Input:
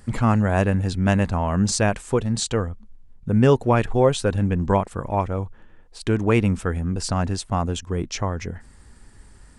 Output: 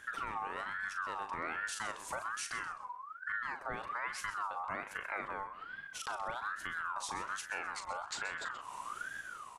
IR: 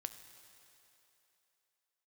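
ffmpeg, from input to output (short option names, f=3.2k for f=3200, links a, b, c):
-filter_complex "[0:a]dynaudnorm=f=150:g=7:m=15dB,alimiter=limit=-13.5dB:level=0:latency=1:release=239,acompressor=threshold=-37dB:ratio=2.5,asplit=2[a][b];[b]adelay=39,volume=-9dB[c];[a][c]amix=inputs=2:normalize=0,aecho=1:1:129|258|387:0.224|0.0672|0.0201,aeval=exprs='val(0)*sin(2*PI*1300*n/s+1300*0.25/1.2*sin(2*PI*1.2*n/s))':c=same,volume=-3dB"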